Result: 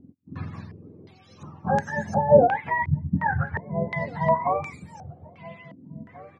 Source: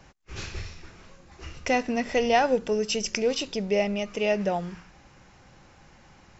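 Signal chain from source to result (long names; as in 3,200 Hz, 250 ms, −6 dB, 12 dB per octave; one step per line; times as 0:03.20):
frequency axis turned over on the octave scale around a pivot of 640 Hz
slap from a distant wall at 290 metres, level −15 dB
low-pass on a step sequencer 2.8 Hz 270–6,500 Hz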